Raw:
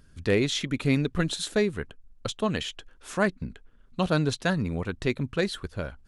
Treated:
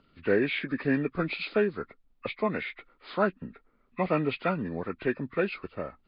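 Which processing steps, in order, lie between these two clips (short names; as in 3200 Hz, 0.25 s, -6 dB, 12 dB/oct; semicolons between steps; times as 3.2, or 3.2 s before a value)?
nonlinear frequency compression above 1000 Hz 1.5:1; three-band isolator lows -15 dB, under 190 Hz, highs -23 dB, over 4300 Hz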